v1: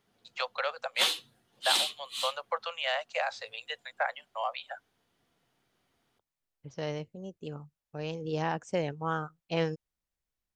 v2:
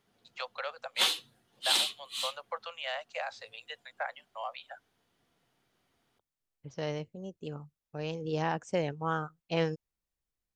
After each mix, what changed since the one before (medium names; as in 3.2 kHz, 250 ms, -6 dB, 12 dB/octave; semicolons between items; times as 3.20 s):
first voice -5.5 dB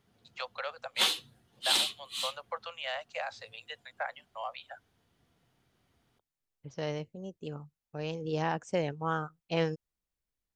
background: add peaking EQ 68 Hz +11 dB 2.7 oct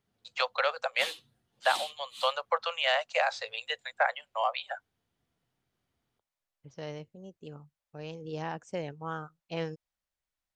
first voice +9.5 dB; second voice -5.0 dB; background -9.5 dB